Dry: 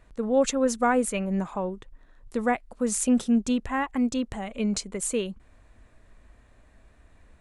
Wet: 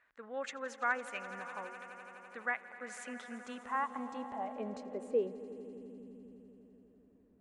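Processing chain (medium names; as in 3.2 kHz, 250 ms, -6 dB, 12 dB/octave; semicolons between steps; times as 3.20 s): echo with a slow build-up 84 ms, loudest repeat 5, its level -17.5 dB; band-pass sweep 1.7 kHz -> 260 Hz, 3.21–6.08 s; trim -1.5 dB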